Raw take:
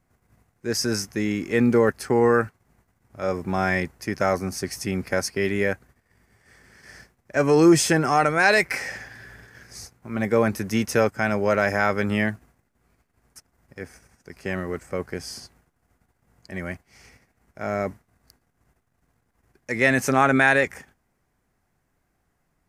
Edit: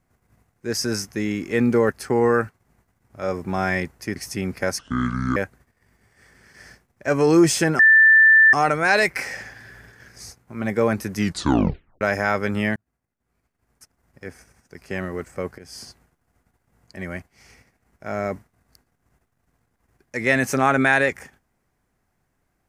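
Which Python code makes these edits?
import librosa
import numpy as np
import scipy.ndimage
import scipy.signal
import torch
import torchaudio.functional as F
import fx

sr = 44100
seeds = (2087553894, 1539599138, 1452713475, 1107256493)

y = fx.edit(x, sr, fx.cut(start_s=4.16, length_s=0.5),
    fx.speed_span(start_s=5.29, length_s=0.36, speed=0.63),
    fx.insert_tone(at_s=8.08, length_s=0.74, hz=1770.0, db=-9.0),
    fx.tape_stop(start_s=10.7, length_s=0.86),
    fx.fade_in_span(start_s=12.31, length_s=1.49),
    fx.fade_in_from(start_s=15.13, length_s=0.25, floor_db=-18.5), tone=tone)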